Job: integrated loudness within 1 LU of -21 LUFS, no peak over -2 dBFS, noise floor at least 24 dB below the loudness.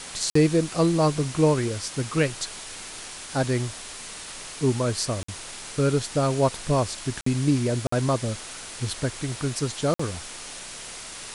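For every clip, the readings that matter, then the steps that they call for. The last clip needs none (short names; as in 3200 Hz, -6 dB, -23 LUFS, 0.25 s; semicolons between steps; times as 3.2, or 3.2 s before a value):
dropouts 5; longest dropout 54 ms; noise floor -39 dBFS; noise floor target -50 dBFS; loudness -26.0 LUFS; peak -8.5 dBFS; loudness target -21.0 LUFS
-> interpolate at 0.3/5.23/7.21/7.87/9.94, 54 ms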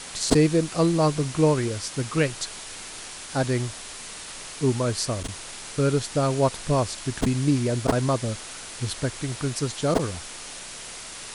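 dropouts 0; noise floor -39 dBFS; noise floor target -49 dBFS
-> denoiser 10 dB, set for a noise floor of -39 dBFS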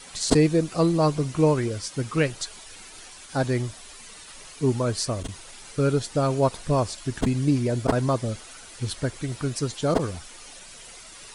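noise floor -45 dBFS; noise floor target -49 dBFS
-> denoiser 6 dB, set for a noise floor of -45 dBFS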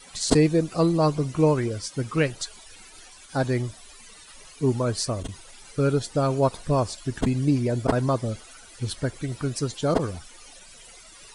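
noise floor -48 dBFS; noise floor target -49 dBFS
-> denoiser 6 dB, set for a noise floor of -48 dBFS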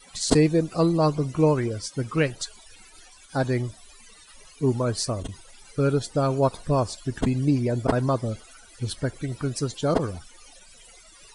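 noise floor -51 dBFS; loudness -25.0 LUFS; peak -4.0 dBFS; loudness target -21.0 LUFS
-> gain +4 dB; limiter -2 dBFS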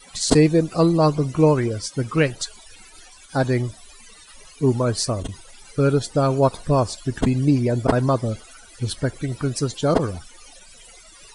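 loudness -21.0 LUFS; peak -2.0 dBFS; noise floor -47 dBFS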